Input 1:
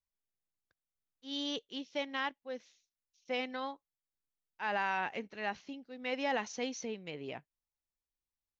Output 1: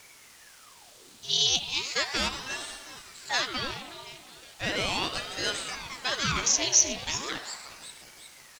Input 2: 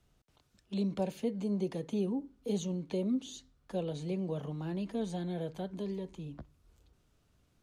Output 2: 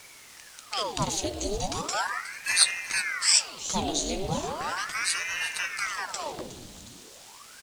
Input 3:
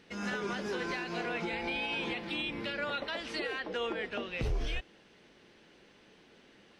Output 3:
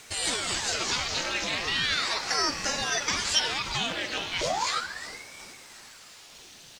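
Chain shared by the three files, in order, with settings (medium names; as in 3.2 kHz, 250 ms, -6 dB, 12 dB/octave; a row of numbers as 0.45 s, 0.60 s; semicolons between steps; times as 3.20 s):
in parallel at 0 dB: gain riding 0.5 s; on the sum: peaking EQ 6.4 kHz +13 dB 0.91 oct; hard clipper -18 dBFS; doubling 14 ms -13 dB; two-band feedback delay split 770 Hz, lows 194 ms, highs 364 ms, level -14 dB; spring tank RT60 1.8 s, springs 58 ms, chirp 40 ms, DRR 7.5 dB; added noise pink -54 dBFS; graphic EQ 250/4000/8000 Hz -9/+8/+9 dB; ring modulator with a swept carrier 1.2 kHz, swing 90%, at 0.37 Hz; normalise loudness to -27 LUFS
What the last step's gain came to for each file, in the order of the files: +1.0 dB, +3.5 dB, -1.0 dB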